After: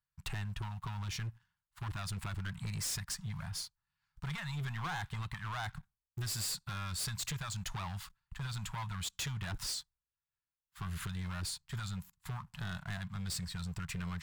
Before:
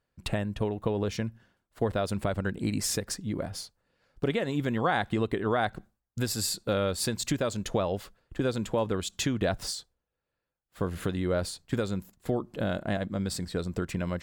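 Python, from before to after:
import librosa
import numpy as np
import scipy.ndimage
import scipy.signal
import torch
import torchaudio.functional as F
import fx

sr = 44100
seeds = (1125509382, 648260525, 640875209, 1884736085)

y = fx.leveller(x, sr, passes=2)
y = scipy.signal.sosfilt(scipy.signal.cheby1(3, 1.0, [160.0, 920.0], 'bandstop', fs=sr, output='sos'), y)
y = np.clip(y, -10.0 ** (-26.5 / 20.0), 10.0 ** (-26.5 / 20.0))
y = F.gain(torch.from_numpy(y), -8.0).numpy()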